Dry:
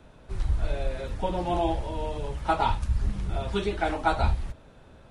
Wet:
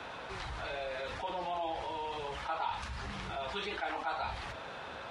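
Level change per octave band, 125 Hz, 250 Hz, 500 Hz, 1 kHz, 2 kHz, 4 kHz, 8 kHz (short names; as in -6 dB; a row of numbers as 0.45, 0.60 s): -17.5, -14.5, -9.0, -7.0, -3.0, -2.0, -5.5 dB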